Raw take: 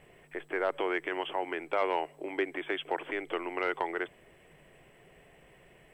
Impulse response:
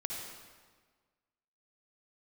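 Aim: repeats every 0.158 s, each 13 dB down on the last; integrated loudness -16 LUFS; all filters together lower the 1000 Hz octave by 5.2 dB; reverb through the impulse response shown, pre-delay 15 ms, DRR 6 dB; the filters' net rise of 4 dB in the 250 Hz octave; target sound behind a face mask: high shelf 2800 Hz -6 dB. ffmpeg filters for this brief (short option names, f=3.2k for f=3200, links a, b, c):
-filter_complex "[0:a]equalizer=f=250:t=o:g=7.5,equalizer=f=1k:t=o:g=-6.5,aecho=1:1:158|316|474:0.224|0.0493|0.0108,asplit=2[a][b];[1:a]atrim=start_sample=2205,adelay=15[c];[b][c]afir=irnorm=-1:irlink=0,volume=-7.5dB[d];[a][d]amix=inputs=2:normalize=0,highshelf=f=2.8k:g=-6,volume=17dB"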